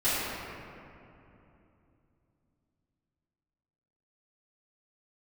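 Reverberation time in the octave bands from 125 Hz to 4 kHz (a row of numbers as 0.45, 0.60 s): 4.3, 3.9, 3.1, 2.7, 2.3, 1.4 s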